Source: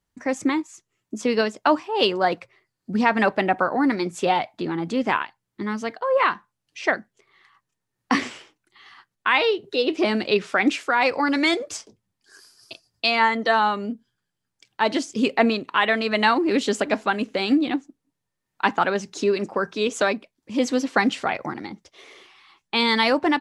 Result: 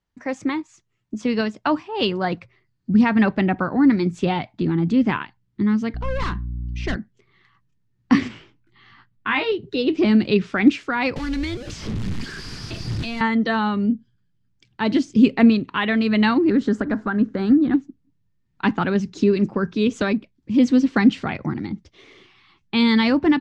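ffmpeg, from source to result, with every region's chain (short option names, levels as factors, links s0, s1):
-filter_complex "[0:a]asettb=1/sr,asplit=3[s0][s1][s2];[s0]atrim=end=5.944[s3];[s1]atrim=start=5.94:end=6.96,asetpts=PTS-STARTPTS,afade=t=in:d=0.004:c=qsin,afade=t=out:st=1.016:d=0.004:c=qsin,volume=12.6,asoftclip=hard,volume=0.0794,aeval=exprs='val(0)+0.00794*(sin(2*PI*60*n/s)+sin(2*PI*2*60*n/s)/2+sin(2*PI*3*60*n/s)/3+sin(2*PI*4*60*n/s)/4+sin(2*PI*5*60*n/s)/5)':c=same[s4];[s2]atrim=start=6.956[s5];[s3][s4]acrossfade=d=0.004:c1=hsin:c2=qsin[s6];[s6][s5]acrossfade=d=0.004:c1=qsin:c2=hsin,asettb=1/sr,asplit=3[s7][s8][s9];[s7]atrim=end=8.284[s10];[s8]atrim=start=8.28:end=9.52,asetpts=PTS-STARTPTS,afade=t=in:d=0.004:c=qsin,afade=t=out:st=1.236:d=0.004:c=qsin,lowpass=f=2900:p=1,equalizer=f=470:t=o:w=0.31:g=-4,asplit=2[s11][s12];[s12]adelay=18,volume=0.708[s13];[s11][s13]amix=inputs=2:normalize=0,atrim=end_sample=54684[s14];[s9]atrim=start=9.516[s15];[s10][s14]acrossfade=d=0.004:c1=hsin:c2=qsin[s16];[s16][s15]acrossfade=d=0.004:c1=qsin:c2=hsin,asettb=1/sr,asplit=3[s17][s18][s19];[s17]atrim=end=11.164[s20];[s18]atrim=start=11.16:end=13.21,asetpts=PTS-STARTPTS,afade=t=in:d=0.004:c=qsin,afade=t=out:st=2.046:d=0.004:c=qsin,aeval=exprs='val(0)+0.5*0.0891*sgn(val(0))':c=same,acrossover=split=190|2100|4600[s21][s22][s23][s24];[s21]acompressor=threshold=0.00794:ratio=3[s25];[s22]acompressor=threshold=0.0251:ratio=3[s26];[s23]acompressor=threshold=0.0178:ratio=3[s27];[s24]acompressor=threshold=0.0158:ratio=3[s28];[s25][s26][s27][s28]amix=inputs=4:normalize=0,tremolo=f=240:d=0.519[s29];[s19]atrim=start=13.206[s30];[s20][s29]acrossfade=d=0.004:c1=hsin:c2=qsin[s31];[s31][s30]acrossfade=d=0.004:c1=qsin:c2=hsin,asettb=1/sr,asplit=3[s32][s33][s34];[s32]atrim=end=16.504[s35];[s33]atrim=start=16.5:end=17.74,asetpts=PTS-STARTPTS,afade=t=in:d=0.004:c=qsin,afade=t=out:st=1.236:d=0.004:c=qsin,highshelf=f=2000:t=q:w=3:g=-7.5,acompressor=threshold=0.1:ratio=2:attack=3.2:release=140:knee=1:detection=peak[s36];[s34]atrim=start=17.736[s37];[s35][s36]acrossfade=d=0.004:c1=hsin:c2=qsin[s38];[s38][s37]acrossfade=d=0.004:c1=qsin:c2=hsin,lowpass=5100,asubboost=boost=9:cutoff=210,volume=0.841"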